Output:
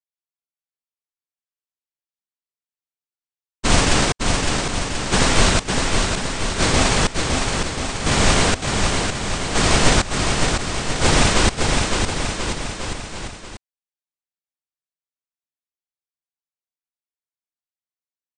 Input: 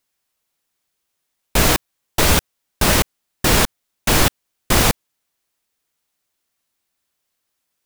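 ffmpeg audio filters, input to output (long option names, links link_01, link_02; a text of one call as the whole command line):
ffmpeg -i in.wav -af "asetrate=18846,aresample=44100,agate=range=-33dB:threshold=-9dB:ratio=3:detection=peak,aecho=1:1:560|1036|1441|1785|2077:0.631|0.398|0.251|0.158|0.1,volume=2dB" out.wav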